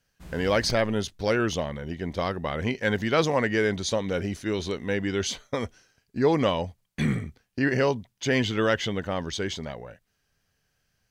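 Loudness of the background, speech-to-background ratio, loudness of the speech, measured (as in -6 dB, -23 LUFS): -44.5 LUFS, 17.5 dB, -27.0 LUFS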